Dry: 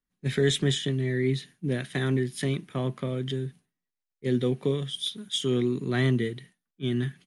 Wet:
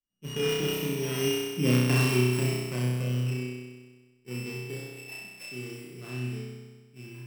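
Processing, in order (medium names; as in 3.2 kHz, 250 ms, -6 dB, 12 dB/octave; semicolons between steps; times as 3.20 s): sorted samples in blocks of 16 samples; Doppler pass-by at 1.75 s, 14 m/s, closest 7 m; flutter echo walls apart 5.5 m, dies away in 1.4 s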